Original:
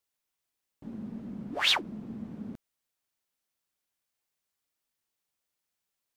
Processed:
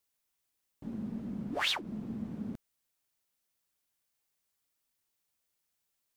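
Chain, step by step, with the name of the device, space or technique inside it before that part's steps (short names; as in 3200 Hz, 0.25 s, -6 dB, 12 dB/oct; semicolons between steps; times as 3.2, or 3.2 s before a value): ASMR close-microphone chain (low shelf 160 Hz +3.5 dB; compressor 6:1, threshold -29 dBFS, peak gain reduction 9 dB; high shelf 6300 Hz +4.5 dB)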